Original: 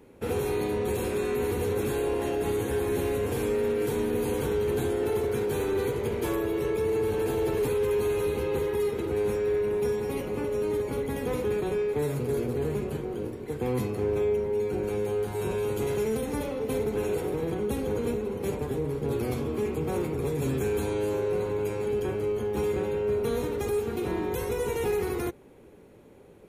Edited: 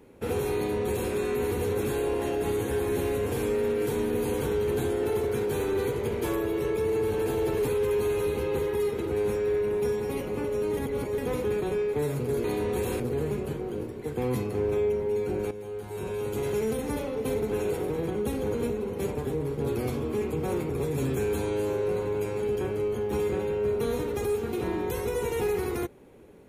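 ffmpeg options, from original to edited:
-filter_complex "[0:a]asplit=6[s0][s1][s2][s3][s4][s5];[s0]atrim=end=10.772[s6];[s1]atrim=start=10.768:end=11.182,asetpts=PTS-STARTPTS,areverse[s7];[s2]atrim=start=11.178:end=12.442[s8];[s3]atrim=start=0.558:end=1.122[s9];[s4]atrim=start=12.438:end=14.95,asetpts=PTS-STARTPTS,afade=t=out:st=2.508:d=0.004:c=hsin:silence=0.251189[s10];[s5]atrim=start=14.95,asetpts=PTS-STARTPTS,afade=t=in:d=1.09:silence=0.251189[s11];[s6][s7]acrossfade=d=0.004:c1=hsin:c2=hsin[s12];[s12][s8]acrossfade=d=0.004:c1=hsin:c2=hsin[s13];[s13][s9]acrossfade=d=0.004:c1=hsin:c2=hsin[s14];[s10][s11]concat=n=2:v=0:a=1[s15];[s14][s15]acrossfade=d=0.004:c1=hsin:c2=hsin"

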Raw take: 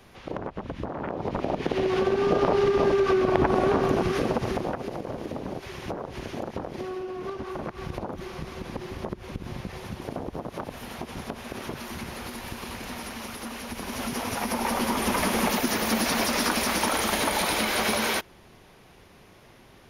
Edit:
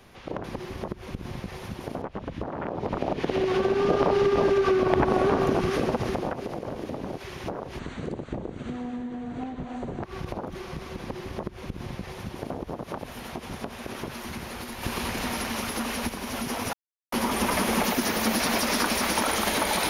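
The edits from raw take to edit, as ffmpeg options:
-filter_complex "[0:a]asplit=9[s0][s1][s2][s3][s4][s5][s6][s7][s8];[s0]atrim=end=0.442[s9];[s1]atrim=start=8.648:end=10.232[s10];[s2]atrim=start=0.438:end=6.214[s11];[s3]atrim=start=6.21:end=7.69,asetpts=PTS-STARTPTS,asetrate=29106,aresample=44100[s12];[s4]atrim=start=7.686:end=12.492[s13];[s5]atrim=start=12.488:end=13.752,asetpts=PTS-STARTPTS,volume=2.11[s14];[s6]atrim=start=13.748:end=14.39,asetpts=PTS-STARTPTS,afade=t=out:st=0.638:d=0.004:c=hsin[s15];[s7]atrim=start=14.39:end=14.78,asetpts=PTS-STARTPTS,volume=0[s16];[s8]atrim=start=14.78,asetpts=PTS-STARTPTS,afade=t=in:d=0.004:c=hsin[s17];[s9][s10]acrossfade=d=0.004:c1=hsin:c2=hsin[s18];[s18][s11]acrossfade=d=0.004:c1=hsin:c2=hsin[s19];[s19][s12]acrossfade=d=0.004:c1=hsin:c2=hsin[s20];[s20][s13]acrossfade=d=0.004:c1=hsin:c2=hsin[s21];[s21][s14]acrossfade=d=0.004:c1=hsin:c2=hsin[s22];[s15][s16][s17]concat=n=3:v=0:a=1[s23];[s22][s23]acrossfade=d=0.004:c1=hsin:c2=hsin"

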